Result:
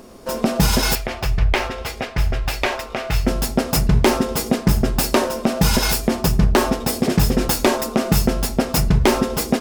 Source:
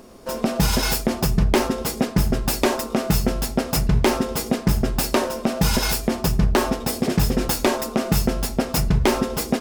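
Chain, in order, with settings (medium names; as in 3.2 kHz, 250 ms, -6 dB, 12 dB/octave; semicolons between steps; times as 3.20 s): 0.95–3.27 s: FFT filter 100 Hz 0 dB, 200 Hz -17 dB, 720 Hz -2 dB, 1 kHz -4 dB, 2.3 kHz +4 dB, 8.9 kHz -12 dB; trim +3 dB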